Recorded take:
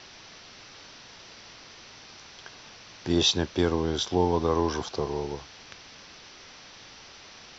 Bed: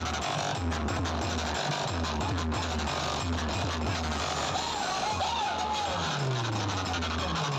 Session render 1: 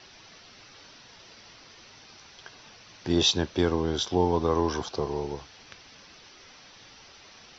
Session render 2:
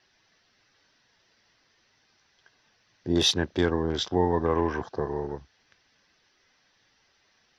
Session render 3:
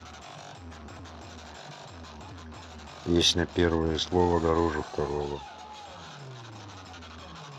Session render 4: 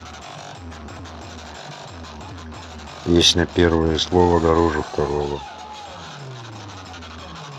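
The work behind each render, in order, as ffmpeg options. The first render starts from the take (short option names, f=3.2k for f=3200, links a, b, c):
-af "afftdn=nr=6:nf=-49"
-af "afwtdn=0.0112,superequalizer=11b=1.78:16b=2.51"
-filter_complex "[1:a]volume=-14dB[a];[0:a][a]amix=inputs=2:normalize=0"
-af "volume=8.5dB"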